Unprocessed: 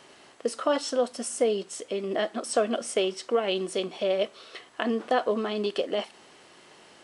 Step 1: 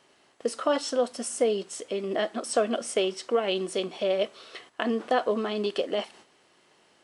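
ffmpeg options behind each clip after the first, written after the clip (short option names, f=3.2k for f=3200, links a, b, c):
-af "agate=range=-9dB:threshold=-50dB:ratio=16:detection=peak"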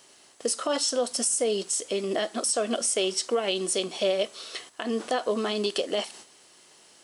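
-af "bass=f=250:g=-1,treble=f=4k:g=14,alimiter=limit=-18dB:level=0:latency=1:release=179,volume=2dB"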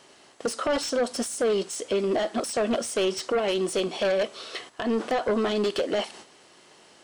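-af "aeval=exprs='0.168*sin(PI/2*2*val(0)/0.168)':c=same,lowpass=f=2.4k:p=1,volume=-4dB"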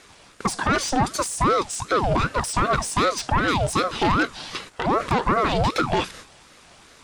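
-af "aeval=exprs='val(0)*sin(2*PI*580*n/s+580*0.6/2.6*sin(2*PI*2.6*n/s))':c=same,volume=7dB"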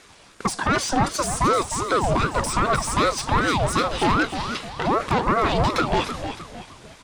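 -filter_complex "[0:a]asplit=6[a][b][c][d][e][f];[b]adelay=306,afreqshift=-77,volume=-9dB[g];[c]adelay=612,afreqshift=-154,volume=-16.7dB[h];[d]adelay=918,afreqshift=-231,volume=-24.5dB[i];[e]adelay=1224,afreqshift=-308,volume=-32.2dB[j];[f]adelay=1530,afreqshift=-385,volume=-40dB[k];[a][g][h][i][j][k]amix=inputs=6:normalize=0"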